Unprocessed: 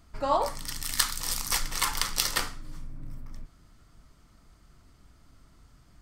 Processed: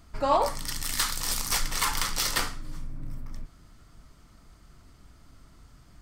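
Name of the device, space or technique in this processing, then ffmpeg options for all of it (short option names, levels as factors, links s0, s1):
saturation between pre-emphasis and de-emphasis: -af "highshelf=f=5100:g=12,asoftclip=type=tanh:threshold=0.168,highshelf=f=5100:g=-12,volume=1.5"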